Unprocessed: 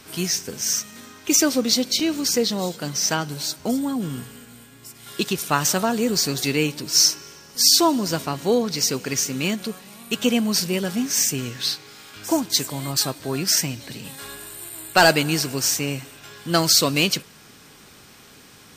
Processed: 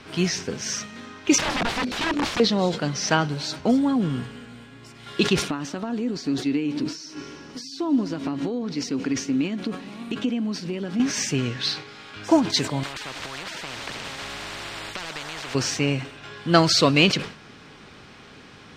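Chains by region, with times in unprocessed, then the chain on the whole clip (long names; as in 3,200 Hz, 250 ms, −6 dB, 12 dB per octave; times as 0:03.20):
0:01.38–0:02.40: spectral envelope exaggerated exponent 1.5 + mains-hum notches 50/100/150/200/250/300/350/400 Hz + wrap-around overflow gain 21.5 dB
0:05.50–0:11.00: downward compressor 12 to 1, threshold −31 dBFS + parametric band 280 Hz +14.5 dB 0.48 octaves
0:12.83–0:15.55: downward compressor 5 to 1, threshold −30 dBFS + every bin compressed towards the loudest bin 10 to 1
whole clip: low-pass filter 3,500 Hz 12 dB per octave; level that may fall only so fast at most 120 dB per second; level +3.5 dB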